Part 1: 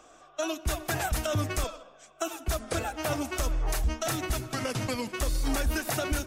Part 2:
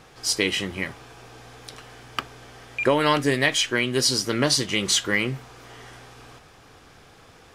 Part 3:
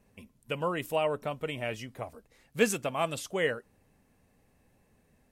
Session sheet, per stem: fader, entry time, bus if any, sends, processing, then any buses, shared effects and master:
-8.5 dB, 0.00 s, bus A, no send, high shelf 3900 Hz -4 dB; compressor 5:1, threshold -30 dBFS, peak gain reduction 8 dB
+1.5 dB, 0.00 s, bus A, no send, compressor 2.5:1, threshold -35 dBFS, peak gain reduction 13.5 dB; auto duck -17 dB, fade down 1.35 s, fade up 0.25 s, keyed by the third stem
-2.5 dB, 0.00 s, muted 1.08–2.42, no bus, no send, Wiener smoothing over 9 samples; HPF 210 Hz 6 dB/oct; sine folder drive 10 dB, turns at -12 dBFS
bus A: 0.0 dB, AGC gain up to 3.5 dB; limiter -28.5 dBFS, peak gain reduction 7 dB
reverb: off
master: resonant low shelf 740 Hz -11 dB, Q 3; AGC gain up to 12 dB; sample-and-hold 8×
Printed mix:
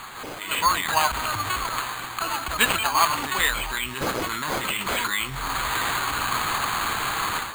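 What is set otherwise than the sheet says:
stem 1 -8.5 dB -> 0.0 dB; stem 2 +1.5 dB -> +12.0 dB; stem 3: missing sine folder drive 10 dB, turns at -12 dBFS

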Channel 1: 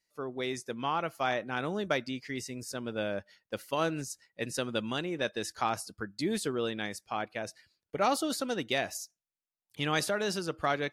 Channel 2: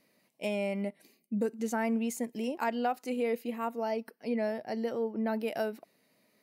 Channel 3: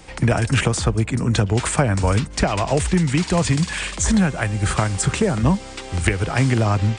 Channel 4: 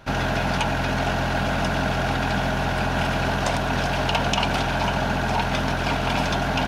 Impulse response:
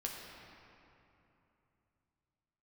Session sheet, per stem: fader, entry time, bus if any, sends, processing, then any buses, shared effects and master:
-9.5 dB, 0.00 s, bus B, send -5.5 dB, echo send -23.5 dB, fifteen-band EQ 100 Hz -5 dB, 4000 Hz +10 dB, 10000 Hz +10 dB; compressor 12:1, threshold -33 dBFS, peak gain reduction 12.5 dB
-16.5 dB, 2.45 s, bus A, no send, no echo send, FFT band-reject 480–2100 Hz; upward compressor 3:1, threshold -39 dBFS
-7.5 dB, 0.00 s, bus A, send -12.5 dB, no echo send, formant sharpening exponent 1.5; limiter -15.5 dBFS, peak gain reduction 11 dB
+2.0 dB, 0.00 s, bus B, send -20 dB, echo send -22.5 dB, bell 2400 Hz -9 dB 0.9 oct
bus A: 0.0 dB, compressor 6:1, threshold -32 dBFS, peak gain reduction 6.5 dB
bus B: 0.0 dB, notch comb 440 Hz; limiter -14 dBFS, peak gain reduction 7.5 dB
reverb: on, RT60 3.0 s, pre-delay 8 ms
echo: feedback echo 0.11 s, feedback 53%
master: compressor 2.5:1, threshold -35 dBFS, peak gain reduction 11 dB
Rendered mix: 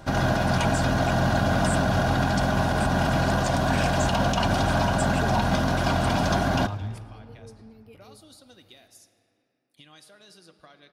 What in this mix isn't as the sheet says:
stem 1 -9.5 dB -> -16.5 dB; master: missing compressor 2.5:1, threshold -35 dBFS, peak gain reduction 11 dB

